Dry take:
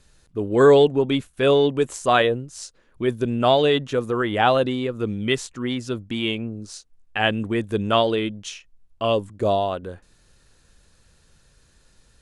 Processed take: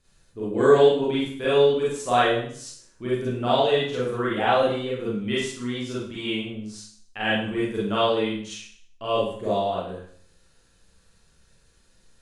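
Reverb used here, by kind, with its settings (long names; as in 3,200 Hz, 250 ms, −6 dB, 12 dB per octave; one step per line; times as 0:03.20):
four-comb reverb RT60 0.56 s, combs from 33 ms, DRR −8.5 dB
level −11.5 dB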